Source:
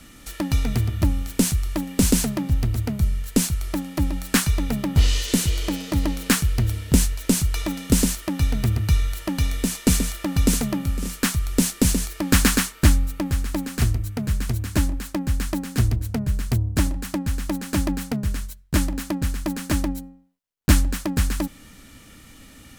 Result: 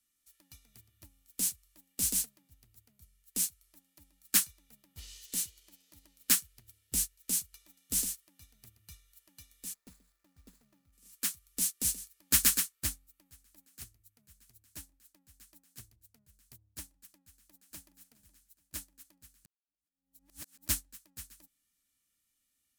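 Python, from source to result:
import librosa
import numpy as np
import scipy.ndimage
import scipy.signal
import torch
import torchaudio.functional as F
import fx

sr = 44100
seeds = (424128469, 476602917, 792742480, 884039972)

y = fx.median_filter(x, sr, points=15, at=(9.73, 10.92), fade=0.02)
y = fx.echo_throw(y, sr, start_s=17.29, length_s=0.65, ms=420, feedback_pct=55, wet_db=-10.5)
y = fx.edit(y, sr, fx.reverse_span(start_s=19.45, length_s=1.24), tone=tone)
y = F.preemphasis(torch.from_numpy(y), 0.9).numpy()
y = fx.upward_expand(y, sr, threshold_db=-38.0, expansion=2.5)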